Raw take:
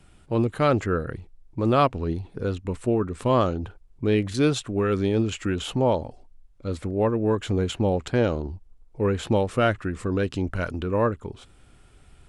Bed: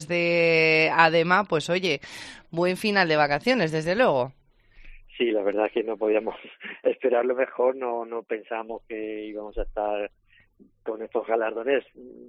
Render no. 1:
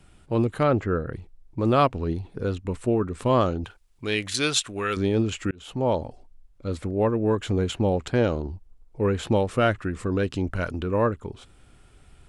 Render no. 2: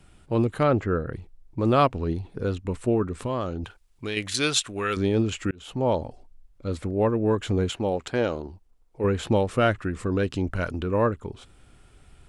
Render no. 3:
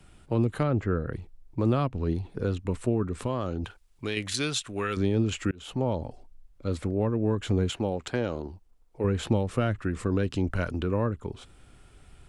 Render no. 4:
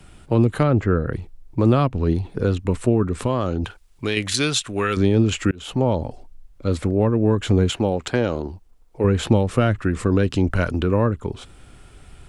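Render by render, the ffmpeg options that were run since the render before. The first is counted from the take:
-filter_complex "[0:a]asettb=1/sr,asplit=3[a][b][c];[a]atrim=end=0.634[d];[b]atrim=start=0.63:end=1.13,asetpts=PTS-STARTPTS,afade=t=in:d=0.004:c=qsin,afade=t=out:st=0.496:d=0.004:c=qsin,lowpass=f=1.7k:p=1[e];[c]atrim=start=1.126[f];[d][e]acrossfade=d=0.004:c1=hsin:c2=qsin[g];[g][f]acrossfade=d=0.004:c1=qsin:c2=hsin,asettb=1/sr,asplit=3[h][i][j];[h]atrim=end=3.644[k];[i]atrim=start=3.64:end=4.97,asetpts=PTS-STARTPTS,afade=t=in:d=0.004:c=qsin,afade=t=out:st=1.326:d=0.004:c=qsin,tiltshelf=f=970:g=-9.5[l];[j]atrim=start=4.966[m];[k][l]acrossfade=d=0.004:c1=hsin:c2=qsin[n];[n][m]acrossfade=d=0.004:c1=qsin:c2=hsin,asplit=2[o][p];[o]atrim=end=5.51,asetpts=PTS-STARTPTS,afade=t=out:st=5.506:d=0.004:c=hsin[q];[p]atrim=start=5.51,asetpts=PTS-STARTPTS,afade=t=in:d=0.46[r];[q][r]concat=n=2:v=0:a=1"
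-filter_complex "[0:a]asettb=1/sr,asplit=3[a][b][c];[a]atrim=end=3.254[d];[b]atrim=start=3.25:end=4.17,asetpts=PTS-STARTPTS,afade=t=in:d=0.004:c=qsin,afade=t=out:st=0.916:d=0.004:c=qsin,acompressor=threshold=-27dB:ratio=2.5:attack=3.2:release=140:knee=1:detection=peak[e];[c]atrim=start=4.166[f];[d][e]acrossfade=d=0.004:c1=hsin:c2=qsin[g];[g][f]acrossfade=d=0.004:c1=qsin:c2=hsin,asettb=1/sr,asplit=3[h][i][j];[h]atrim=end=7.694[k];[i]atrim=start=7.69:end=9.04,asetpts=PTS-STARTPTS,afade=t=in:d=0.004:c=qsin,afade=t=out:st=1.346:d=0.004:c=qsin,lowshelf=f=210:g=-10.5[l];[j]atrim=start=9.036[m];[k][l]acrossfade=d=0.004:c1=hsin:c2=qsin[n];[n][m]acrossfade=d=0.004:c1=qsin:c2=hsin"
-filter_complex "[0:a]acrossover=split=250[a][b];[b]acompressor=threshold=-27dB:ratio=6[c];[a][c]amix=inputs=2:normalize=0"
-af "volume=8dB"

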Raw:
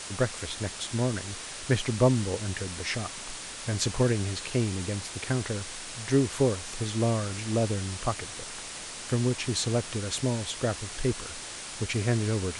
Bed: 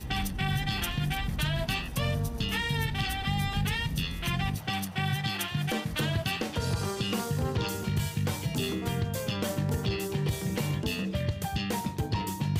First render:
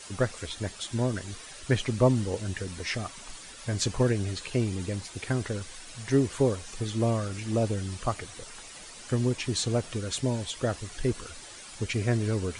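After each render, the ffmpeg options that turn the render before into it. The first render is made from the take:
-af "afftdn=nr=10:nf=-40"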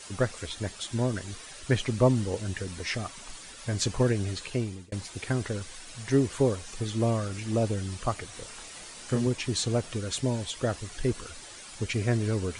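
-filter_complex "[0:a]asettb=1/sr,asplit=3[a][b][c];[a]atrim=end=8.304[d];[b]atrim=start=8.3:end=9.27,asetpts=PTS-STARTPTS,afade=t=in:d=0.004:c=qsin,afade=t=out:st=0.966:d=0.004:c=qsin,asplit=2[e][f];[f]adelay=30,volume=-5dB[g];[e][g]amix=inputs=2:normalize=0,atrim=end_sample=42777[h];[c]atrim=start=9.266[i];[d][h]acrossfade=d=0.004:c1=hsin:c2=qsin[j];[j][i]acrossfade=d=0.004:c1=qsin:c2=hsin,asplit=2[k][l];[k]atrim=end=4.92,asetpts=PTS-STARTPTS,afade=t=out:st=4.3:d=0.62:c=qsin[m];[l]atrim=start=4.92,asetpts=PTS-STARTPTS,afade=t=in:d=0.004:c=hsin[n];[m][n]concat=n=2:v=0:a=1"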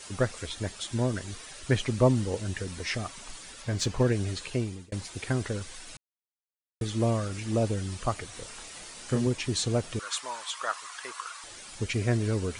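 -filter_complex "[0:a]asettb=1/sr,asplit=3[a][b][c];[a]atrim=end=3.624[d];[b]atrim=start=3.62:end=4.12,asetpts=PTS-STARTPTS,afade=t=in:d=0.004:c=qsin,afade=t=out:st=0.496:d=0.004:c=qsin,adynamicsmooth=sensitivity=6:basefreq=7.7k[e];[c]atrim=start=4.116[f];[d][e]acrossfade=d=0.004:c1=hsin:c2=qsin[g];[g][f]acrossfade=d=0.004:c1=qsin:c2=hsin,asettb=1/sr,asplit=3[h][i][j];[h]atrim=end=9.994[k];[i]atrim=start=9.99:end=11.44,asetpts=PTS-STARTPTS,afade=t=in:d=0.004:c=qsin,afade=t=out:st=1.446:d=0.004:c=qsin,highpass=f=1.1k:t=q:w=4.4[l];[j]atrim=start=11.436[m];[k][l]acrossfade=d=0.004:c1=hsin:c2=qsin[n];[n][m]acrossfade=d=0.004:c1=qsin:c2=hsin,asplit=3[o][p][q];[o]atrim=end=5.97,asetpts=PTS-STARTPTS,afade=t=out:st=5.966:d=0.004:c=hsin[r];[p]atrim=start=5.97:end=6.81,asetpts=PTS-STARTPTS,volume=0[s];[q]atrim=start=6.81,asetpts=PTS-STARTPTS,afade=t=in:d=0.004:c=hsin[t];[r][s][t]concat=n=3:v=0:a=1"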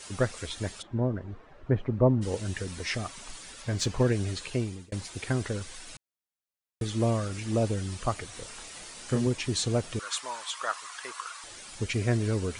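-filter_complex "[0:a]asplit=3[a][b][c];[a]afade=t=out:st=0.81:d=0.02[d];[b]lowpass=1k,afade=t=in:st=0.81:d=0.02,afade=t=out:st=2.21:d=0.02[e];[c]afade=t=in:st=2.21:d=0.02[f];[d][e][f]amix=inputs=3:normalize=0"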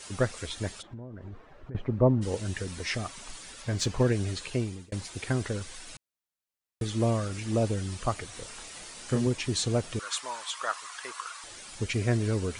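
-filter_complex "[0:a]asettb=1/sr,asplit=3[a][b][c];[a]atrim=end=0.784[d];[b]atrim=start=0.78:end=1.75,asetpts=PTS-STARTPTS,afade=t=in:d=0.004:c=qsin,afade=t=out:st=0.966:d=0.004:c=qsin,acompressor=threshold=-37dB:ratio=16:attack=3.2:release=140:knee=1:detection=peak[e];[c]atrim=start=1.746[f];[d][e]acrossfade=d=0.004:c1=hsin:c2=qsin[g];[g][f]acrossfade=d=0.004:c1=qsin:c2=hsin"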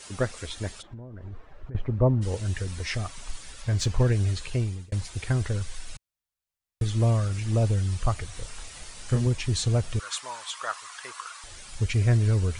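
-af "asubboost=boost=5:cutoff=110"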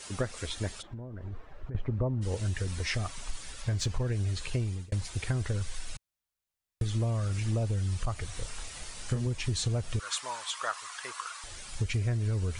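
-af "acompressor=threshold=-26dB:ratio=10"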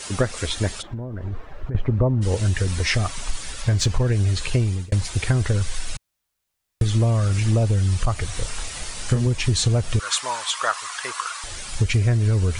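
-af "volume=10.5dB"

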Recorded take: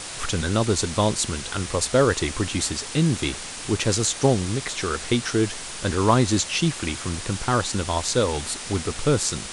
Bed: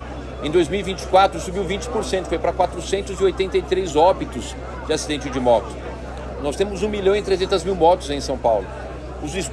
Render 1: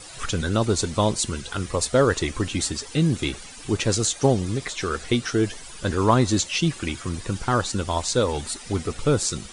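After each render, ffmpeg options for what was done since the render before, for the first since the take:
-af "afftdn=nr=13:nf=-35"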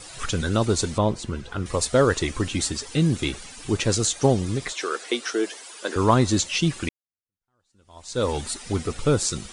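-filter_complex "[0:a]asettb=1/sr,asplit=3[a][b][c];[a]atrim=end=0.984[d];[b]atrim=start=0.98:end=1.66,asetpts=PTS-STARTPTS,afade=t=in:d=0.004:c=qsin,afade=t=out:st=0.676:d=0.004:c=qsin,lowpass=f=1.4k:p=1[e];[c]atrim=start=1.656[f];[d][e]acrossfade=d=0.004:c1=hsin:c2=qsin[g];[g][f]acrossfade=d=0.004:c1=qsin:c2=hsin,asettb=1/sr,asplit=3[h][i][j];[h]atrim=end=4.724[k];[i]atrim=start=4.72:end=5.96,asetpts=PTS-STARTPTS,afade=t=in:d=0.004:c=qsin,afade=t=out:st=1.236:d=0.004:c=qsin,highpass=f=330:w=0.5412,highpass=f=330:w=1.3066[l];[j]atrim=start=5.956[m];[k][l]acrossfade=d=0.004:c1=hsin:c2=qsin[n];[n][m]acrossfade=d=0.004:c1=qsin:c2=hsin,asplit=2[o][p];[o]atrim=end=6.89,asetpts=PTS-STARTPTS,afade=t=out:st=6.886:d=0.004:c=hsin[q];[p]atrim=start=6.89,asetpts=PTS-STARTPTS,afade=t=in:d=1.36:c=exp[r];[q][r]concat=n=2:v=0:a=1"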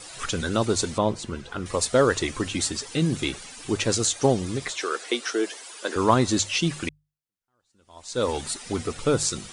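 -af "lowshelf=f=130:g=-7.5,bandreject=f=50:t=h:w=6,bandreject=f=100:t=h:w=6,bandreject=f=150:t=h:w=6"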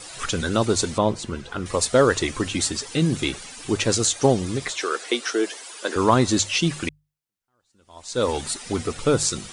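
-af "volume=2.5dB,alimiter=limit=-3dB:level=0:latency=1"

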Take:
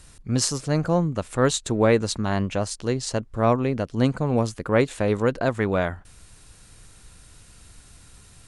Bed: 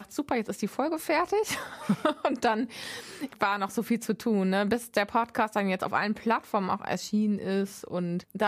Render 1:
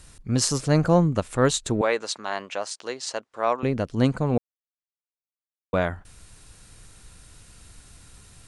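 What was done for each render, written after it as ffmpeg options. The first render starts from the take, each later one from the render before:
-filter_complex "[0:a]asettb=1/sr,asplit=3[a][b][c];[a]atrim=end=1.814[d];[b]atrim=start=1.81:end=3.63,asetpts=PTS-STARTPTS,afade=t=in:d=0.004:c=qsin,afade=t=out:st=1.816:d=0.004:c=qsin,highpass=600,lowpass=7.8k[e];[c]atrim=start=3.626[f];[d][e]acrossfade=d=0.004:c1=hsin:c2=qsin[g];[g][f]acrossfade=d=0.004:c1=qsin:c2=hsin,asplit=5[h][i][j][k][l];[h]atrim=end=0.502[m];[i]atrim=start=0.498:end=1.202,asetpts=PTS-STARTPTS,volume=3dB[n];[j]atrim=start=1.198:end=4.38,asetpts=PTS-STARTPTS,afade=t=out:st=3.178:d=0.004:c=hsin[o];[k]atrim=start=4.38:end=5.73,asetpts=PTS-STARTPTS,volume=0[p];[l]atrim=start=5.73,asetpts=PTS-STARTPTS,afade=t=in:d=0.004:c=hsin[q];[m][n]acrossfade=d=0.004:c1=hsin:c2=hsin[r];[o][p][q]concat=n=3:v=0:a=1[s];[r][s]acrossfade=d=0.004:c1=hsin:c2=hsin"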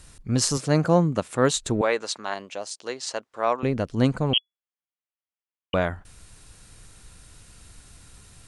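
-filter_complex "[0:a]asettb=1/sr,asplit=3[a][b][c];[a]atrim=end=0.574[d];[b]atrim=start=0.57:end=1.56,asetpts=PTS-STARTPTS,afade=t=in:d=0.004:c=qsin,afade=t=out:st=0.986:d=0.004:c=qsin,highpass=130[e];[c]atrim=start=1.556[f];[d][e]acrossfade=d=0.004:c1=hsin:c2=qsin[g];[g][f]acrossfade=d=0.004:c1=qsin:c2=hsin,asettb=1/sr,asplit=3[h][i][j];[h]atrim=end=2.344[k];[i]atrim=start=2.34:end=2.86,asetpts=PTS-STARTPTS,afade=t=in:d=0.004:c=qsin,afade=t=out:st=0.516:d=0.004:c=qsin,equalizer=f=1.4k:w=0.7:g=-9[l];[j]atrim=start=2.856[m];[k][l]acrossfade=d=0.004:c1=hsin:c2=qsin[n];[n][m]acrossfade=d=0.004:c1=qsin:c2=hsin,asettb=1/sr,asplit=3[o][p][q];[o]atrim=end=4.334[r];[p]atrim=start=4.33:end=5.74,asetpts=PTS-STARTPTS,afade=t=in:d=0.004:c=qsin,afade=t=out:st=1.406:d=0.004:c=qsin,lowpass=f=2.9k:t=q:w=0.5098,lowpass=f=2.9k:t=q:w=0.6013,lowpass=f=2.9k:t=q:w=0.9,lowpass=f=2.9k:t=q:w=2.563,afreqshift=-3400[s];[q]atrim=start=5.736[t];[r][s]acrossfade=d=0.004:c1=hsin:c2=qsin[u];[u][t]acrossfade=d=0.004:c1=qsin:c2=hsin"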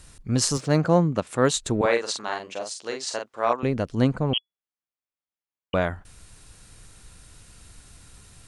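-filter_complex "[0:a]asettb=1/sr,asplit=3[a][b][c];[a]atrim=end=0.574[d];[b]atrim=start=0.57:end=1.27,asetpts=PTS-STARTPTS,afade=t=in:d=0.004:c=qsin,afade=t=out:st=0.696:d=0.004:c=qsin,adynamicsmooth=sensitivity=4.5:basefreq=6.1k[e];[c]atrim=start=1.266[f];[d][e]acrossfade=d=0.004:c1=hsin:c2=qsin[g];[g][f]acrossfade=d=0.004:c1=qsin:c2=hsin,asettb=1/sr,asplit=3[h][i][j];[h]atrim=end=1.794[k];[i]atrim=start=1.79:end=3.53,asetpts=PTS-STARTPTS,afade=t=in:d=0.004:c=qsin,afade=t=out:st=1.736:d=0.004:c=qsin,asplit=2[l][m];[m]adelay=43,volume=-4.5dB[n];[l][n]amix=inputs=2:normalize=0,atrim=end_sample=76734[o];[j]atrim=start=3.526[p];[k][o]acrossfade=d=0.004:c1=hsin:c2=qsin[q];[q][p]acrossfade=d=0.004:c1=qsin:c2=hsin,asettb=1/sr,asplit=3[r][s][t];[r]atrim=end=4.044[u];[s]atrim=start=4.04:end=5.75,asetpts=PTS-STARTPTS,afade=t=in:d=0.004:c=qsin,afade=t=out:st=1.706:d=0.004:c=qsin,highshelf=f=3.2k:g=-9[v];[t]atrim=start=5.746[w];[u][v]acrossfade=d=0.004:c1=hsin:c2=qsin[x];[x][w]acrossfade=d=0.004:c1=qsin:c2=hsin"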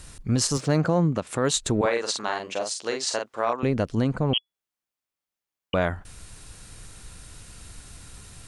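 -filter_complex "[0:a]asplit=2[a][b];[b]acompressor=threshold=-30dB:ratio=6,volume=-3dB[c];[a][c]amix=inputs=2:normalize=0,alimiter=limit=-12.5dB:level=0:latency=1:release=69"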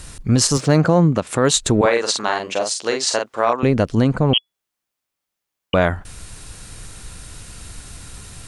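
-af "volume=7.5dB"

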